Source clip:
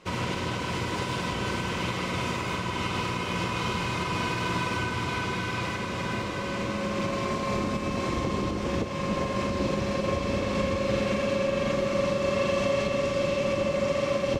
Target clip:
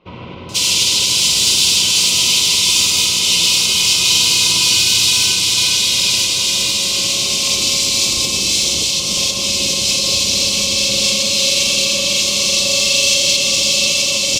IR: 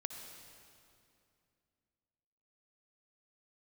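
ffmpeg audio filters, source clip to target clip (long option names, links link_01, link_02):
-filter_complex "[0:a]acrossover=split=1500[link_01][link_02];[link_02]adelay=490[link_03];[link_01][link_03]amix=inputs=2:normalize=0,asplit=2[link_04][link_05];[1:a]atrim=start_sample=2205[link_06];[link_05][link_06]afir=irnorm=-1:irlink=0,volume=5.5dB[link_07];[link_04][link_07]amix=inputs=2:normalize=0,aexciter=amount=15.4:drive=9.3:freq=2800,volume=-8.5dB"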